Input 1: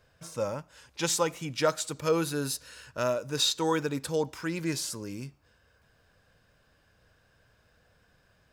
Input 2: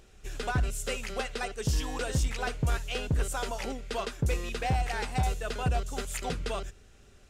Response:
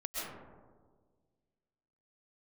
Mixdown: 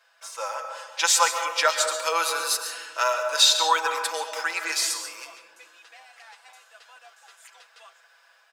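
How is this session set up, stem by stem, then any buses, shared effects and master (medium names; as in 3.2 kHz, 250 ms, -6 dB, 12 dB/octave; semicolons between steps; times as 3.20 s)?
+2.5 dB, 0.00 s, send -4.5 dB, level rider gain up to 3.5 dB
-13.5 dB, 1.30 s, no send, none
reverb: on, RT60 1.6 s, pre-delay 90 ms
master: high-pass 790 Hz 24 dB/octave; treble shelf 11 kHz -6 dB; comb 6 ms, depth 67%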